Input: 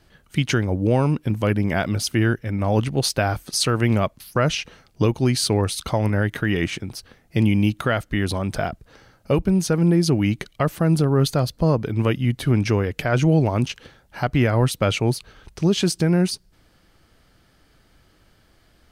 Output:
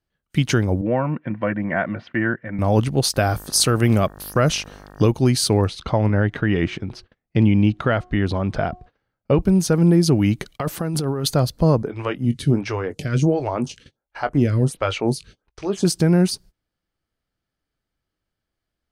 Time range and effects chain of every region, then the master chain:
0.81–2.59 speaker cabinet 200–2300 Hz, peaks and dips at 280 Hz -5 dB, 420 Hz -4 dB, 1800 Hz +8 dB + notch comb 420 Hz
3.13–5.02 high shelf 7900 Hz +8 dB + notch 930 Hz, Q 9.5 + buzz 50 Hz, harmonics 37, -45 dBFS -3 dB/oct
5.67–9.41 LPF 3400 Hz + de-hum 362.5 Hz, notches 3
10.55–11.29 low shelf 160 Hz -8.5 dB + notch 620 Hz + negative-ratio compressor -25 dBFS
11.82–15.85 LPF 10000 Hz 24 dB/oct + doubler 21 ms -12 dB + photocell phaser 1.4 Hz
whole clip: gate -44 dBFS, range -27 dB; dynamic EQ 2400 Hz, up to -4 dB, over -41 dBFS, Q 1; gain +2.5 dB

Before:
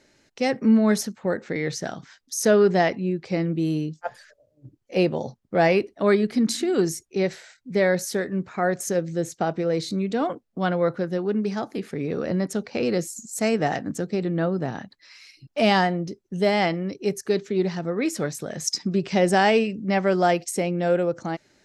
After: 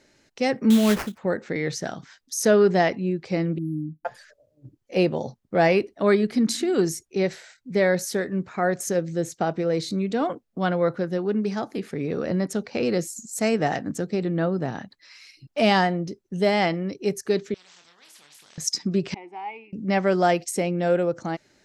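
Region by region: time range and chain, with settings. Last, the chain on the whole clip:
0.7–1.18 LPF 8800 Hz 24 dB/oct + sample-rate reducer 3600 Hz, jitter 20%
3.58–4.05 brick-wall FIR band-stop 320–10000 Hz + tone controls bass -3 dB, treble -7 dB
17.54–18.58 band-pass 3400 Hz, Q 13 + doubler 28 ms -8 dB + spectral compressor 10:1
19.14–19.73 vowel filter u + three-band isolator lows -20 dB, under 450 Hz, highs -14 dB, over 3000 Hz
whole clip: dry

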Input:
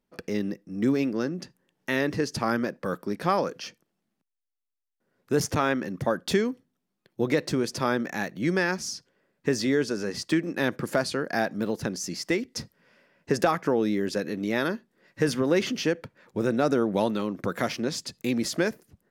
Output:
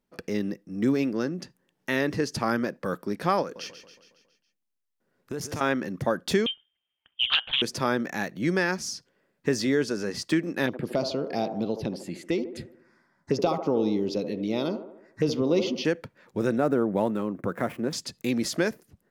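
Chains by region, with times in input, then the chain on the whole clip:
3.42–5.61 compressor 4:1, threshold -30 dBFS + feedback echo 0.138 s, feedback 55%, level -10.5 dB
6.46–7.62 HPF 130 Hz + inverted band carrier 3400 Hz + Doppler distortion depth 0.47 ms
10.66–15.85 envelope phaser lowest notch 450 Hz, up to 1700 Hz, full sweep at -25 dBFS + LPF 9500 Hz + band-limited delay 74 ms, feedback 54%, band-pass 600 Hz, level -7 dB
16.58–17.93 median filter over 9 samples + HPF 40 Hz + bell 4600 Hz -12.5 dB 1.6 oct
whole clip: dry

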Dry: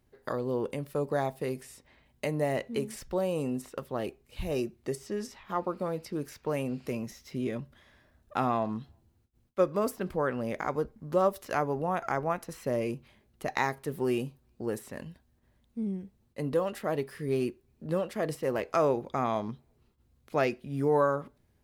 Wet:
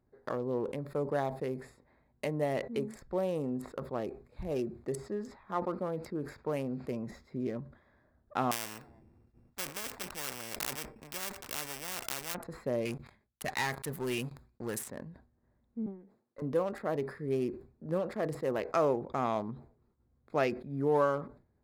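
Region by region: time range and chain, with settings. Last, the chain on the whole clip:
8.51–12.35 sample sorter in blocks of 16 samples + spectral compressor 4:1
12.85–14.9 passive tone stack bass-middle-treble 5-5-5 + sample leveller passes 5
15.86–16.42 HPF 310 Hz + tube stage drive 36 dB, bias 0.45
whole clip: Wiener smoothing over 15 samples; low shelf 95 Hz -5.5 dB; sustainer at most 130 dB/s; gain -2 dB

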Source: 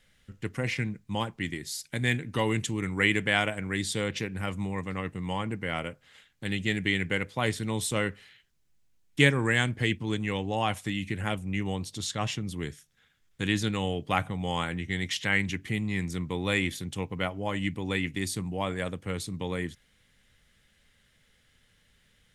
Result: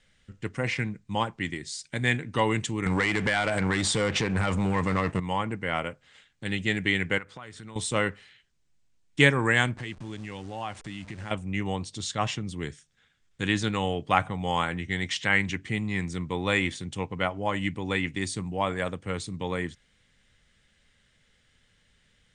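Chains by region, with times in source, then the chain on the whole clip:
2.86–5.2 compressor 8:1, threshold -31 dBFS + sample leveller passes 3
7.18–7.76 bell 1300 Hz +8.5 dB + compressor, threshold -40 dBFS
9.77–11.31 level-crossing sampler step -40 dBFS + notch 460 Hz + compressor 2.5:1, threshold -37 dBFS
whole clip: steep low-pass 9400 Hz 96 dB/oct; dynamic EQ 1000 Hz, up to +6 dB, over -41 dBFS, Q 0.75

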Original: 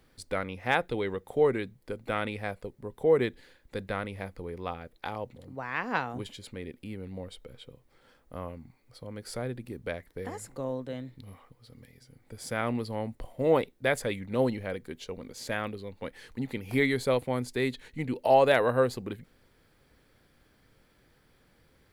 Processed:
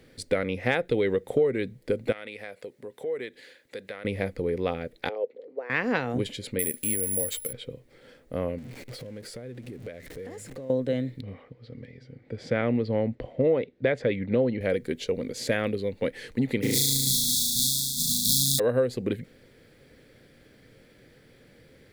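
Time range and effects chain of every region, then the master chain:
2.12–4.05 HPF 790 Hz 6 dB/oct + compressor 2.5:1, threshold -48 dBFS
5.09–5.7 ladder high-pass 400 Hz, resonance 65% + air absorption 170 m
6.59–7.53 careless resampling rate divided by 4×, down none, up zero stuff + tilt shelf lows -3.5 dB, about 1300 Hz + doubler 13 ms -12 dB
8.58–10.7 zero-crossing step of -45.5 dBFS + compressor 10:1, threshold -46 dBFS
11.21–14.61 HPF 43 Hz + air absorption 210 m
16.62–18.58 spectral contrast lowered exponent 0.11 + brick-wall FIR band-stop 270–3300 Hz + flutter echo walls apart 6.3 m, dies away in 1.3 s
whole clip: graphic EQ 125/250/500/1000/2000/4000/8000 Hz +7/+6/+11/-6/+8/+4/+4 dB; compressor 6:1, threshold -22 dBFS; gain +1.5 dB

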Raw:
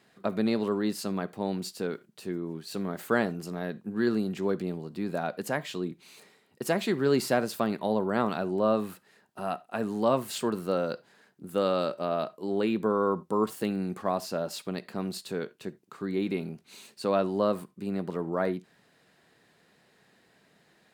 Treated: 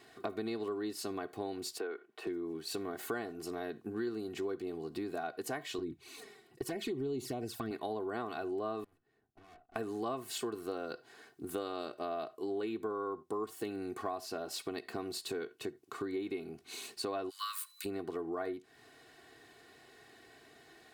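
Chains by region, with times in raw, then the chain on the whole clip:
1.78–2.27 three-band isolator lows -22 dB, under 350 Hz, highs -18 dB, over 2800 Hz + three-band squash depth 40%
5.78–7.71 compressor 2:1, threshold -29 dBFS + low shelf 220 Hz +12 dB + envelope flanger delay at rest 6.1 ms, full sweep at -23 dBFS
8.84–9.76 EQ curve 150 Hz 0 dB, 360 Hz -10 dB, 14000 Hz -30 dB + tube stage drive 60 dB, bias 0.75
17.29–17.84 steep high-pass 1100 Hz 72 dB/oct + tilt +4.5 dB/oct + whine 4000 Hz -65 dBFS
whole clip: comb 2.7 ms, depth 84%; compressor 4:1, threshold -40 dBFS; gain +2.5 dB

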